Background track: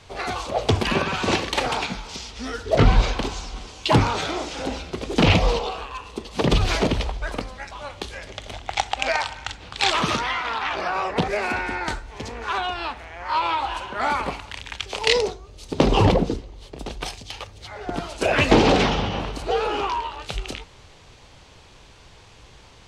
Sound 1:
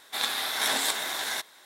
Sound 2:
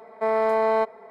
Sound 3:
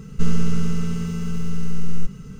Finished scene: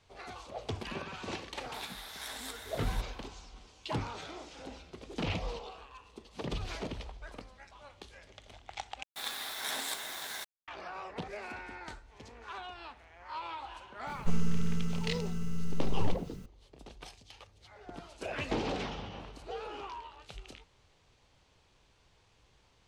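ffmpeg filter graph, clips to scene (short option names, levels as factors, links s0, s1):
-filter_complex "[1:a]asplit=2[s0][s1];[0:a]volume=0.126[s2];[s1]acrusher=bits=5:mix=0:aa=0.000001[s3];[3:a]acrusher=bits=8:mix=0:aa=0.000001[s4];[s2]asplit=2[s5][s6];[s5]atrim=end=9.034[s7];[s3]atrim=end=1.65,asetpts=PTS-STARTPTS,volume=0.316[s8];[s6]atrim=start=10.676[s9];[s0]atrim=end=1.65,asetpts=PTS-STARTPTS,volume=0.15,afade=t=in:d=0.004:c=hsin,afade=t=out:st=1.646:d=0.004:c=hsin,adelay=1600[s10];[s4]atrim=end=2.39,asetpts=PTS-STARTPTS,volume=0.316,afade=t=in:d=0.004:c=hsin,afade=t=out:st=2.386:d=0.004:c=hsin,adelay=14070[s11];[s7][s8]acrossfade=d=0.004:c1=hsin:c2=hsin[s12];[s12][s9]acrossfade=d=0.004:c1=hsin:c2=hsin[s13];[s13][s10][s11]amix=inputs=3:normalize=0"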